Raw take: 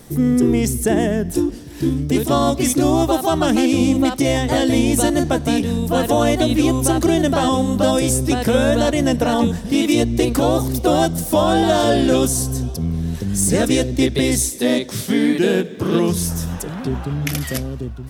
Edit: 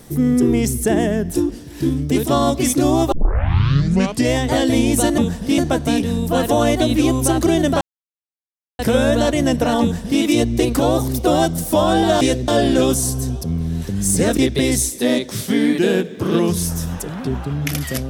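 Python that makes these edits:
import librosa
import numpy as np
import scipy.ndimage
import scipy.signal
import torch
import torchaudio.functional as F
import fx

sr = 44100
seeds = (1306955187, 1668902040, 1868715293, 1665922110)

y = fx.edit(x, sr, fx.tape_start(start_s=3.12, length_s=1.23),
    fx.silence(start_s=7.41, length_s=0.98),
    fx.duplicate(start_s=9.41, length_s=0.4, to_s=5.18),
    fx.move(start_s=13.7, length_s=0.27, to_s=11.81), tone=tone)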